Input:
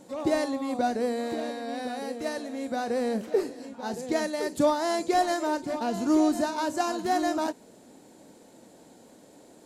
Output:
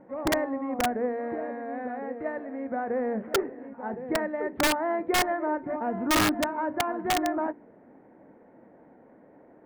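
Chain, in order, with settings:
elliptic low-pass filter 2,000 Hz, stop band 70 dB
hum removal 58.16 Hz, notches 7
wrap-around overflow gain 17.5 dB

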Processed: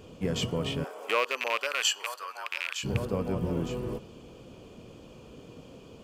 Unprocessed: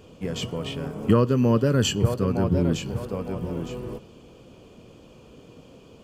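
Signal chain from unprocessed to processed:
loose part that buzzes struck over −19 dBFS, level −17 dBFS
0:00.83–0:02.83: high-pass filter 500 Hz → 1,200 Hz 24 dB per octave

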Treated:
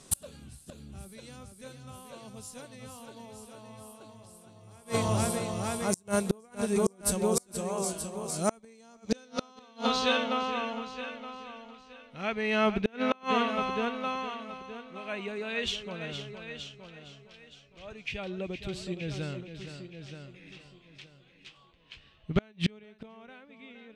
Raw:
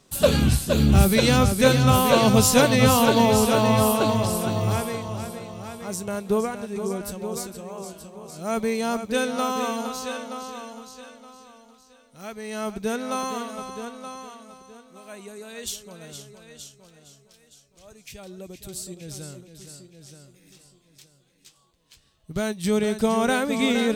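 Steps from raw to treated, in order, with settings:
low-pass filter sweep 9,800 Hz → 2,700 Hz, 0:08.35–0:10.45
gate with flip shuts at −16 dBFS, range −33 dB
level +3.5 dB

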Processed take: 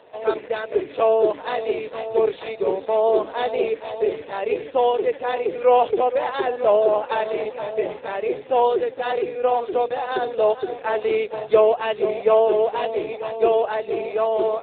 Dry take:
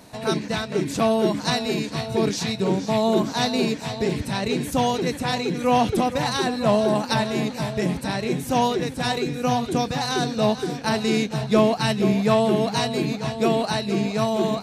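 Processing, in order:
low shelf with overshoot 310 Hz −13.5 dB, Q 3
AMR narrowband 7.4 kbit/s 8,000 Hz

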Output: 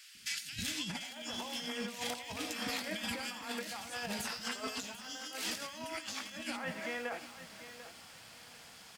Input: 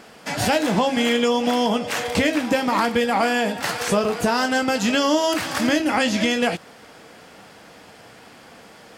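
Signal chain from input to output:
guitar amp tone stack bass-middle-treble 5-5-5
three-band delay without the direct sound highs, lows, mids 150/630 ms, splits 310/1,800 Hz
compressor whose output falls as the input rises −40 dBFS, ratio −0.5
on a send: single-tap delay 87 ms −15.5 dB
on the sum: feedback echo at a low word length 742 ms, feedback 35%, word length 9 bits, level −12 dB

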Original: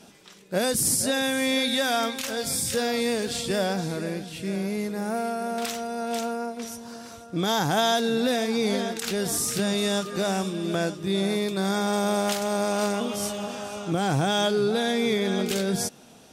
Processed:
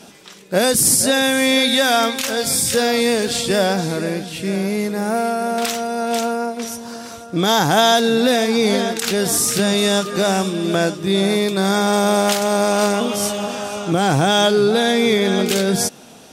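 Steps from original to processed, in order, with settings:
low-shelf EQ 130 Hz −5.5 dB
level +9 dB

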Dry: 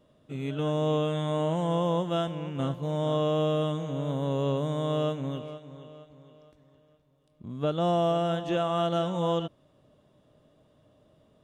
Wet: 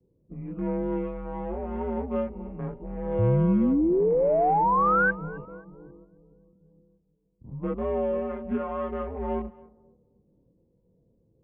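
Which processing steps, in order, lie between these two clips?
adaptive Wiener filter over 25 samples
multi-voice chorus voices 4, 0.18 Hz, delay 25 ms, depth 2.1 ms
in parallel at −3 dB: downward compressor, threshold −38 dBFS, peak gain reduction 14.5 dB
0:03.18–0:05.11: on the sum: sound drawn into the spectrogram rise 210–1,700 Hz −22 dBFS
0:05.45–0:05.96: all-pass dispersion highs, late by 43 ms, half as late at 410 Hz
on a send: feedback echo with a high-pass in the loop 267 ms, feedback 44%, high-pass 150 Hz, level −22 dB
on the sum: low-pass that shuts in the quiet parts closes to 380 Hz, open at −28.5 dBFS
single-sideband voice off tune −110 Hz 180–2,300 Hz

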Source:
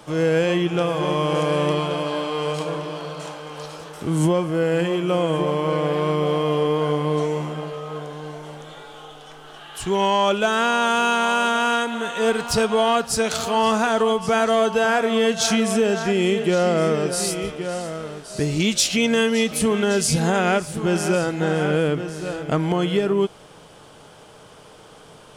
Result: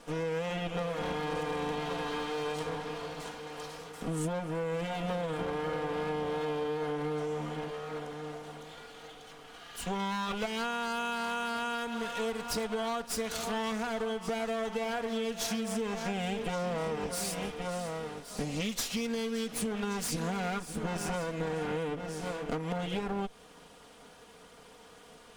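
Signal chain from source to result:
lower of the sound and its delayed copy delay 4.2 ms
downward compressor, threshold −24 dBFS, peak gain reduction 9 dB
level −6.5 dB

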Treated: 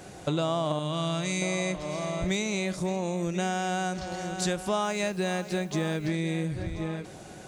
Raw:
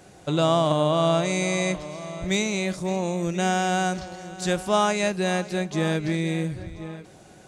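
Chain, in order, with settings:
0:00.79–0:01.42: parametric band 630 Hz −10 dB 2.1 octaves
downward compressor 4 to 1, threshold −31 dBFS, peak gain reduction 12.5 dB
0:04.83–0:06.08: background noise white −67 dBFS
level +4.5 dB

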